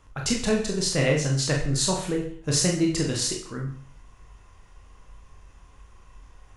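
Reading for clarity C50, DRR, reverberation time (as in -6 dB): 7.0 dB, -0.5 dB, 0.50 s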